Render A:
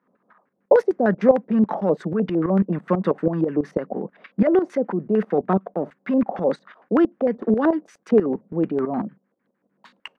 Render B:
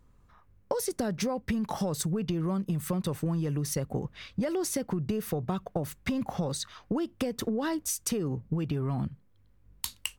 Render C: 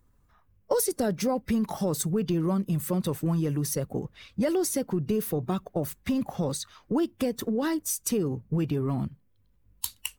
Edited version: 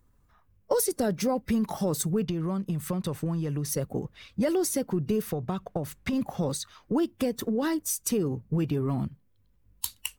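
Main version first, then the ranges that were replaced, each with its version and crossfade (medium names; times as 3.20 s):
C
2.25–3.69 s: from B
5.22–6.13 s: from B
not used: A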